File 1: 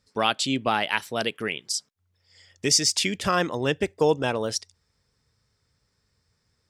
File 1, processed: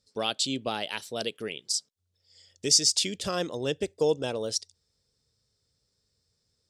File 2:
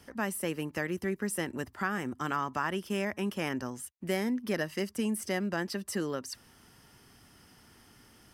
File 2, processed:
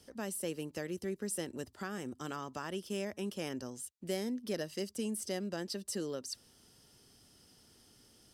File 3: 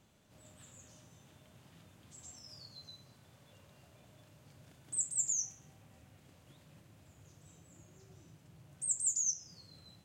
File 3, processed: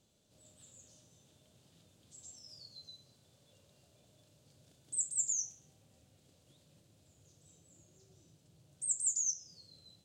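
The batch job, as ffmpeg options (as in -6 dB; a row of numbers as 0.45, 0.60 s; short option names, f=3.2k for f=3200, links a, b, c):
-af "equalizer=f=500:t=o:w=1:g=5,equalizer=f=1k:t=o:w=1:g=-5,equalizer=f=2k:t=o:w=1:g=-6,equalizer=f=4k:t=o:w=1:g=7,equalizer=f=8k:t=o:w=1:g=6,volume=-7dB"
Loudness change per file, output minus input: -3.0, -6.0, -0.5 LU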